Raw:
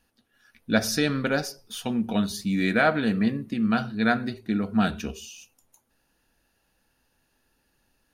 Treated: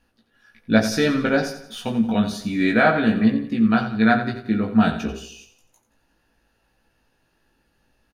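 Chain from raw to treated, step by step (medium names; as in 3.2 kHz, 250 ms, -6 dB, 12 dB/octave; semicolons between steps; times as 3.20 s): treble shelf 5.9 kHz -11.5 dB; doubling 18 ms -3 dB; feedback delay 88 ms, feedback 44%, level -11.5 dB; trim +3 dB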